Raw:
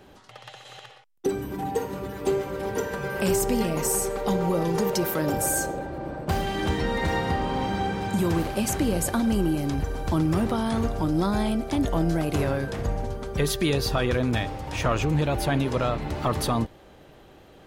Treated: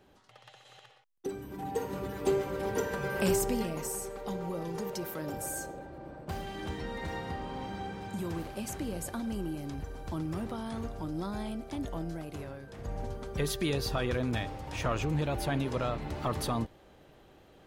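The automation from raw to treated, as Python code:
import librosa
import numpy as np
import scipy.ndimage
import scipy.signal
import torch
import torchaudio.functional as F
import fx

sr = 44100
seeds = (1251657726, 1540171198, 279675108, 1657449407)

y = fx.gain(x, sr, db=fx.line((1.44, -11.0), (1.96, -3.5), (3.27, -3.5), (3.95, -12.0), (11.89, -12.0), (12.64, -18.5), (13.02, -7.0)))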